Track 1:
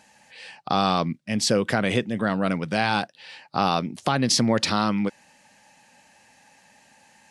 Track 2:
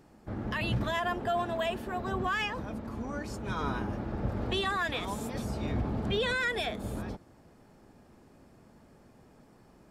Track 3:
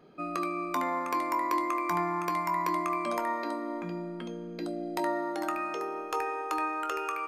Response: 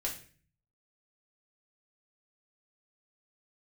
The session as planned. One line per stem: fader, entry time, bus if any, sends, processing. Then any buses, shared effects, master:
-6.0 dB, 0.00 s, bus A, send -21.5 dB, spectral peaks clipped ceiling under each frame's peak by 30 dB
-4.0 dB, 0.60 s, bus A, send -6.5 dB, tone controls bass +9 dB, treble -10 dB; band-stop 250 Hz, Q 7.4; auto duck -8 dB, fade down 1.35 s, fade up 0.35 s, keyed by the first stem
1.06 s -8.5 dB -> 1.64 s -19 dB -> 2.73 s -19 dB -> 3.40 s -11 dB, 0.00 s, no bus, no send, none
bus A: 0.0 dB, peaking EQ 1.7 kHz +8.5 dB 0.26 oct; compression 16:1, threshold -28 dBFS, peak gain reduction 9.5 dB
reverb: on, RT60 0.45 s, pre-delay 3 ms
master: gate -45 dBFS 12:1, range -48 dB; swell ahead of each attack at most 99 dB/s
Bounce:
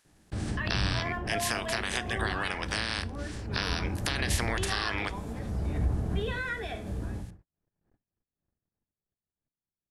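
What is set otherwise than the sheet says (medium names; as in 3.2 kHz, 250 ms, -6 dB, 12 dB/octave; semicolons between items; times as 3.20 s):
stem 2: entry 0.60 s -> 0.05 s; stem 3: muted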